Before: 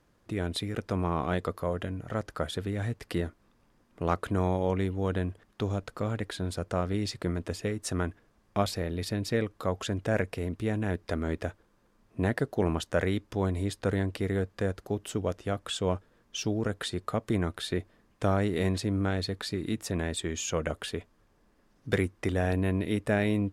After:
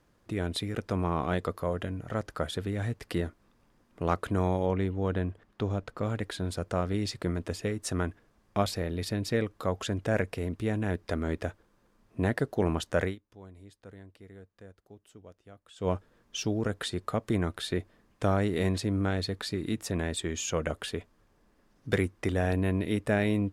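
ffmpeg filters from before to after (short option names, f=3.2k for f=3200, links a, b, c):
-filter_complex "[0:a]asettb=1/sr,asplit=3[a][b][c];[a]atrim=end=4.664[d];[b]atrim=start=4.66:end=6.03,asetpts=PTS-STARTPTS,afade=t=in:d=0.004:c=qsin,afade=t=out:st=1.366:d=0.004:c=qsin,highshelf=f=4.8k:g=-9.5[e];[c]atrim=start=6.026[f];[d][e]acrossfade=d=0.004:c1=hsin:c2=qsin[g];[g][f]acrossfade=d=0.004:c1=qsin:c2=hsin,asplit=3[h][i][j];[h]atrim=end=13.16,asetpts=PTS-STARTPTS,afade=t=out:st=13.04:d=0.12:silence=0.0944061[k];[i]atrim=start=13.16:end=15.76,asetpts=PTS-STARTPTS,volume=-20.5dB[l];[j]atrim=start=15.76,asetpts=PTS-STARTPTS,afade=t=in:d=0.12:silence=0.0944061[m];[k][l][m]concat=n=3:v=0:a=1"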